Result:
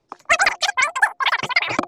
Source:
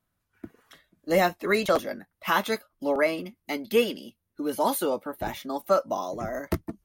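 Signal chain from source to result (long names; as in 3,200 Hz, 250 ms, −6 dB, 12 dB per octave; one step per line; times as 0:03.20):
low-pass filter 2,200 Hz 24 dB per octave
low-shelf EQ 480 Hz +9 dB
hum removal 48.54 Hz, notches 4
change of speed 3.65×
level +3.5 dB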